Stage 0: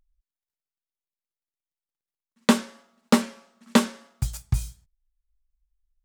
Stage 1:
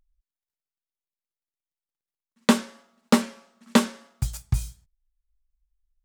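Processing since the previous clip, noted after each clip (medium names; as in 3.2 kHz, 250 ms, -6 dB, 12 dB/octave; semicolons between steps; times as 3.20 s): no audible change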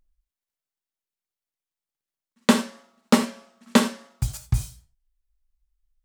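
gated-style reverb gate 110 ms flat, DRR 8.5 dB; trim +1 dB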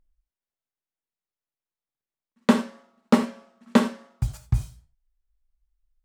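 treble shelf 2.8 kHz -11.5 dB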